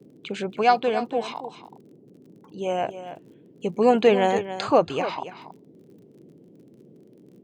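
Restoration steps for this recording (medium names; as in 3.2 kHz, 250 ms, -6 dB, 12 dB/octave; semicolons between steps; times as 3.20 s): de-click; noise print and reduce 16 dB; inverse comb 281 ms -12 dB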